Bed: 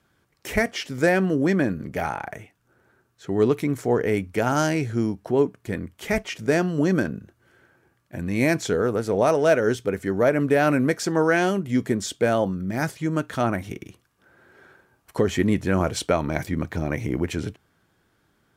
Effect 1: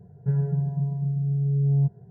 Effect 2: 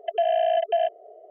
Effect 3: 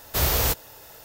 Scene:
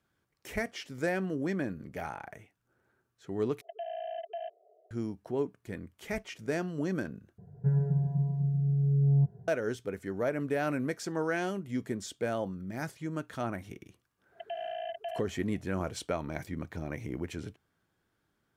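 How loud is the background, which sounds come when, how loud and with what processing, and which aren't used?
bed -11.5 dB
3.61 s: replace with 2 -16.5 dB
7.38 s: replace with 1 -3 dB
14.32 s: add 2 -9.5 dB + peaking EQ 510 Hz -14 dB 0.74 oct
not used: 3

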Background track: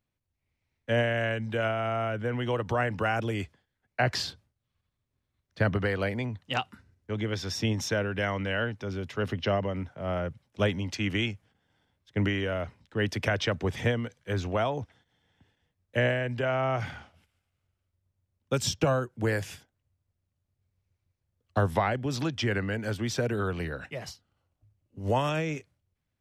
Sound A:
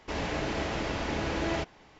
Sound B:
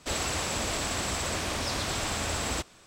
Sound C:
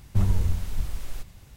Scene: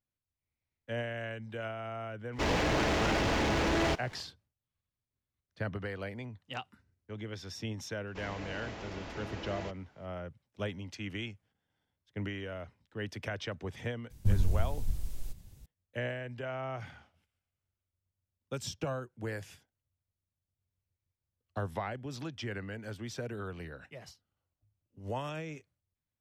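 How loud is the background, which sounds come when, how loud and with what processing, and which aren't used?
background track -10.5 dB
2.31 s: add A -5 dB, fades 0.10 s + waveshaping leveller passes 3
8.07 s: add A -11.5 dB
14.10 s: add C -4.5 dB + peaking EQ 1.4 kHz -11.5 dB 2.8 oct
not used: B

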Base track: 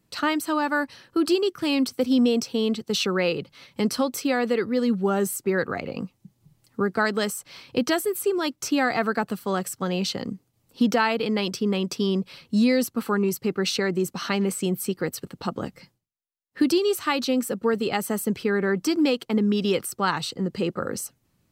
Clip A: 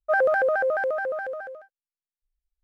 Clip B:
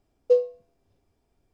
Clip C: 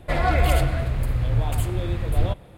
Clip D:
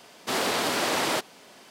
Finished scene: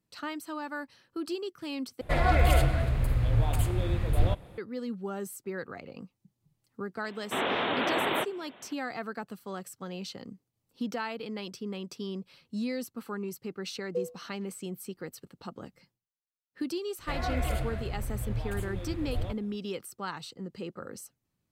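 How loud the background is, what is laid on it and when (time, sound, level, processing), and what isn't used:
base track -13 dB
2.01 s: replace with C -3 dB
7.04 s: add D -2 dB + resampled via 8 kHz
13.65 s: add B -13.5 dB
16.99 s: add C -11.5 dB
not used: A

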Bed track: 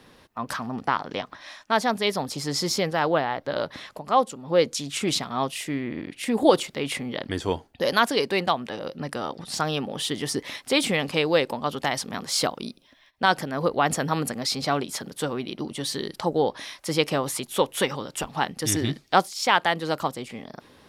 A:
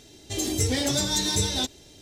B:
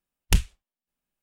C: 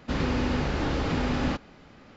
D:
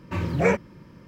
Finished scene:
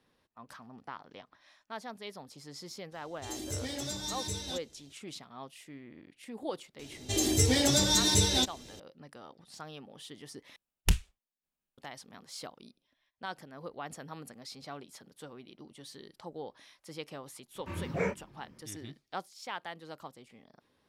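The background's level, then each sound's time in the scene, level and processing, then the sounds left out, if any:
bed track -19.5 dB
2.92 s: add A -12.5 dB
6.79 s: add A -0.5 dB
10.56 s: replace with B -5.5 dB
17.55 s: add D -8 dB + chorus 2.7 Hz, delay 19 ms, depth 7.1 ms
not used: C

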